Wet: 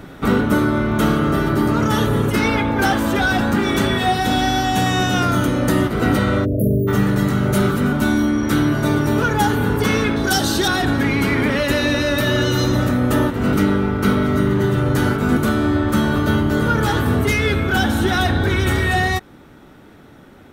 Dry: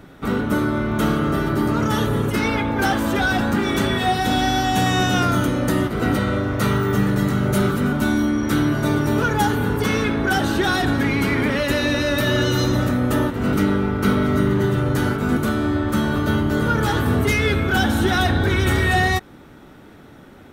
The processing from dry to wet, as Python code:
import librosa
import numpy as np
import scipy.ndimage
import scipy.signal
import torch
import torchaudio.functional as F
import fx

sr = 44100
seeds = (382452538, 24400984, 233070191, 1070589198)

y = fx.spec_erase(x, sr, start_s=6.45, length_s=0.43, low_hz=680.0, high_hz=10000.0)
y = fx.high_shelf_res(y, sr, hz=3300.0, db=9.0, q=1.5, at=(10.16, 10.68))
y = fx.rider(y, sr, range_db=10, speed_s=0.5)
y = y * 10.0 ** (2.0 / 20.0)